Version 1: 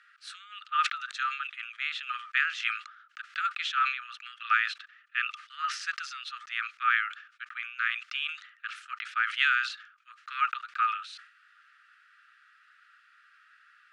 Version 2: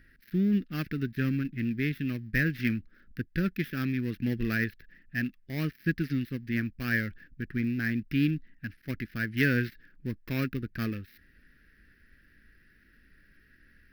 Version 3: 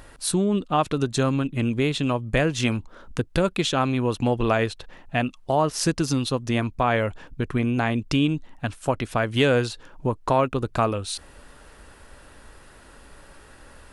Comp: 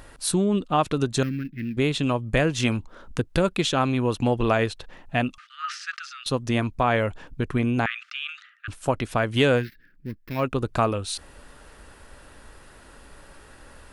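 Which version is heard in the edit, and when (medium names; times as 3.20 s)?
3
1.23–1.77 s: from 2
5.38–6.26 s: from 1
7.86–8.68 s: from 1
9.60–10.40 s: from 2, crossfade 0.10 s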